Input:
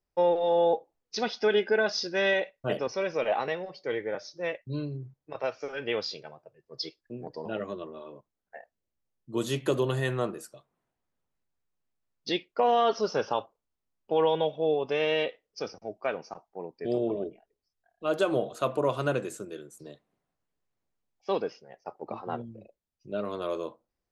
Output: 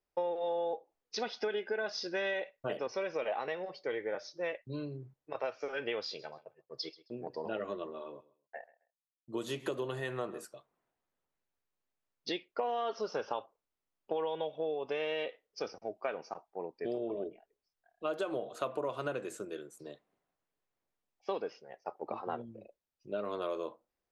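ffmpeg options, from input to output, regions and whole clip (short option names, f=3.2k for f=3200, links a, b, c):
-filter_complex "[0:a]asettb=1/sr,asplit=3[a][b][c];[a]atrim=end=6.064[d];[b]atrim=start=6.06:end=10.45,asetpts=PTS-STARTPTS,afade=t=in:d=0.004:c=qsin,afade=t=out:st=4.386:d=0.004:c=qsin,agate=range=-33dB:threshold=-57dB:ratio=3:release=100:detection=peak,aecho=1:1:132|264:0.0944|0.0208,atrim=end_sample=193599[e];[c]atrim=start=10.446[f];[d][e]acrossfade=d=0.004:c1=hsin:c2=qsin[g];[g][f]acrossfade=d=0.004:c1=qsin:c2=hsin,acompressor=threshold=-31dB:ratio=6,bass=f=250:g=-8,treble=f=4k:g=-5"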